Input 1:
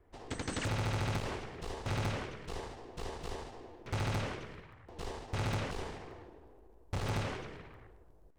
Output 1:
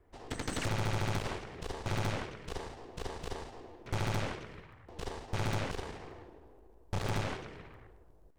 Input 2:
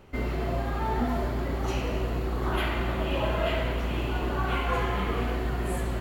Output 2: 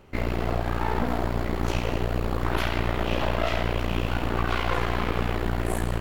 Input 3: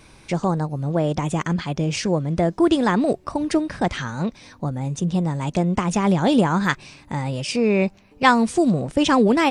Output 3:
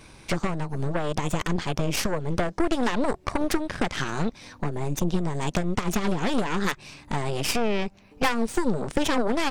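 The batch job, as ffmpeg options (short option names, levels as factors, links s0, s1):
-af "acompressor=threshold=0.0631:ratio=4,aeval=exprs='0.282*(cos(1*acos(clip(val(0)/0.282,-1,1)))-cos(1*PI/2))+0.0631*(cos(8*acos(clip(val(0)/0.282,-1,1)))-cos(8*PI/2))':c=same"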